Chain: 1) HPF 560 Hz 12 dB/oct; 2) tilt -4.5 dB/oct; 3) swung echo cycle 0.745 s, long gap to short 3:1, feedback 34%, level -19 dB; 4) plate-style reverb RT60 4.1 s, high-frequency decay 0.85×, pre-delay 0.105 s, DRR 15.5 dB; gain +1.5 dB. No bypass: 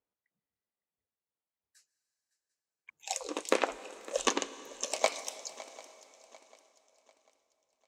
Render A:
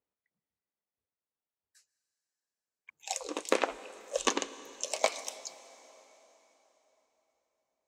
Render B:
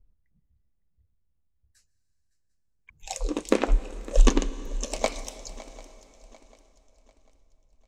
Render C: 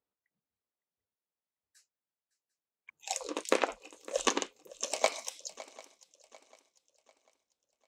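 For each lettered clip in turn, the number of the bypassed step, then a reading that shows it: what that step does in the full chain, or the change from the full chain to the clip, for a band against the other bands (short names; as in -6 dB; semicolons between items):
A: 3, echo-to-direct -13.0 dB to -15.5 dB; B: 1, crest factor change -6.0 dB; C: 4, echo-to-direct -13.0 dB to -17.0 dB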